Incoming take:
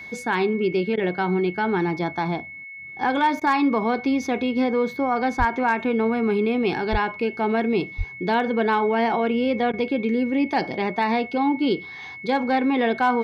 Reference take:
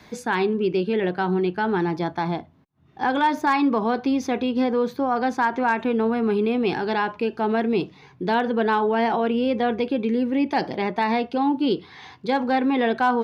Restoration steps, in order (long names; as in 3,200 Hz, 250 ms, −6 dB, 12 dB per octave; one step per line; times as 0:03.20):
notch filter 2,200 Hz, Q 30
0:05.38–0:05.50: high-pass filter 140 Hz 24 dB per octave
0:06.91–0:07.03: high-pass filter 140 Hz 24 dB per octave
0:07.97–0:08.09: high-pass filter 140 Hz 24 dB per octave
repair the gap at 0:00.96/0:03.40/0:09.72, 13 ms